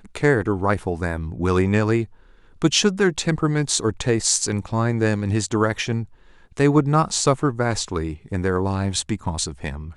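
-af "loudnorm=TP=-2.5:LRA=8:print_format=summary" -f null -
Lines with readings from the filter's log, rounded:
Input Integrated:    -21.9 LUFS
Input True Peak:      -1.4 dBTP
Input LRA:             2.7 LU
Input Threshold:     -32.1 LUFS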